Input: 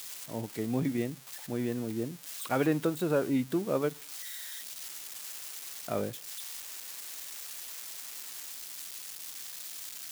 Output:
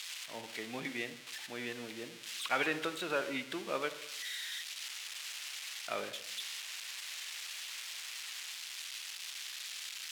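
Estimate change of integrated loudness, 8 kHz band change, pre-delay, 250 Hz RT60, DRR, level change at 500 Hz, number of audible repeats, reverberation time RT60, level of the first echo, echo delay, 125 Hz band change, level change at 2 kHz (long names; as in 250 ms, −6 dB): −4.5 dB, −2.5 dB, 36 ms, 0.90 s, 12.0 dB, −8.0 dB, no echo audible, 0.85 s, no echo audible, no echo audible, −18.5 dB, +5.5 dB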